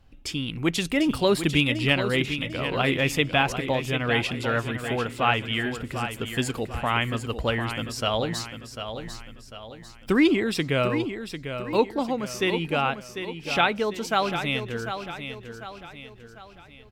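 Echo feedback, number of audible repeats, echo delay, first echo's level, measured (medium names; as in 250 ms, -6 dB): 44%, 4, 747 ms, -9.0 dB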